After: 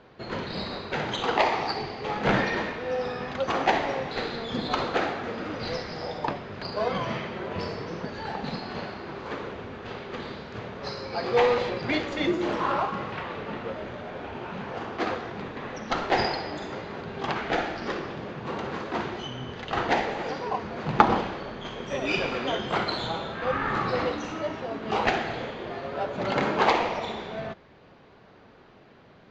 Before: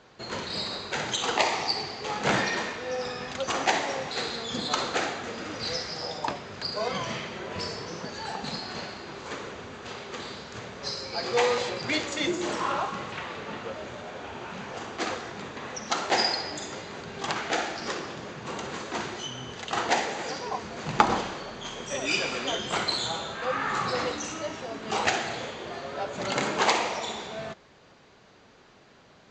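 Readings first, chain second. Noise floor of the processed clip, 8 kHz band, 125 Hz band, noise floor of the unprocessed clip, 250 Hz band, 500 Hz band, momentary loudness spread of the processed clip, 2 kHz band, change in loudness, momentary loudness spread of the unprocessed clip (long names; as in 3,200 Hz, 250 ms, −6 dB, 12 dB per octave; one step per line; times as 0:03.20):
−53 dBFS, −13.5 dB, +4.5 dB, −56 dBFS, +4.0 dB, +3.0 dB, 12 LU, 0.0 dB, +1.0 dB, 13 LU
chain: in parallel at −10 dB: sample-and-hold swept by an LFO 22×, swing 100% 0.52 Hz
on the sum: high-frequency loss of the air 230 metres
level +2 dB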